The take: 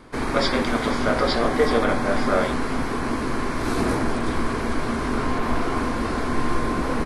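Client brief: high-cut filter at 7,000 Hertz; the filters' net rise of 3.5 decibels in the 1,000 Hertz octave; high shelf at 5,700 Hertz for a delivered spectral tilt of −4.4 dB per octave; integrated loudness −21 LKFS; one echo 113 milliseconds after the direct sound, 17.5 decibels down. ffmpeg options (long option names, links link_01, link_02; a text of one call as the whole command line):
ffmpeg -i in.wav -af "lowpass=7000,equalizer=frequency=1000:width_type=o:gain=4.5,highshelf=frequency=5700:gain=-6.5,aecho=1:1:113:0.133,volume=1.5dB" out.wav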